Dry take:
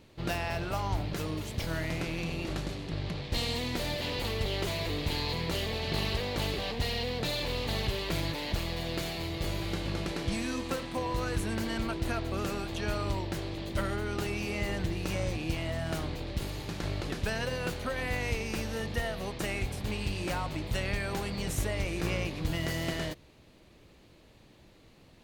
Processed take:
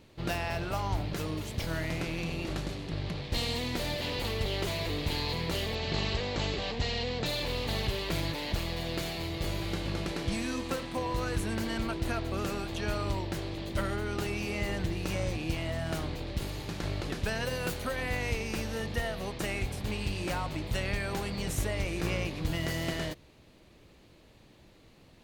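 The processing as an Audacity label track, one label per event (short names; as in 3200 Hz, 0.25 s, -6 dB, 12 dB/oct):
5.750000	7.260000	brick-wall FIR low-pass 8100 Hz
17.450000	17.960000	high shelf 9400 Hz +11 dB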